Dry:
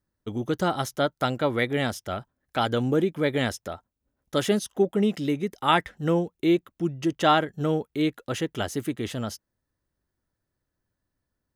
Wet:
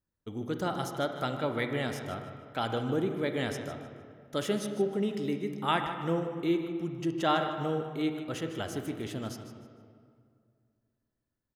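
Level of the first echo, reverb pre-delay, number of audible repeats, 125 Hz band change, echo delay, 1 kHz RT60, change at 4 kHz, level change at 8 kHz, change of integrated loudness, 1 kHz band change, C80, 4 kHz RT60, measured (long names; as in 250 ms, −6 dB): −12.5 dB, 29 ms, 2, −6.0 dB, 153 ms, 2.1 s, −7.0 dB, −7.0 dB, −6.5 dB, −6.5 dB, 7.0 dB, 1.4 s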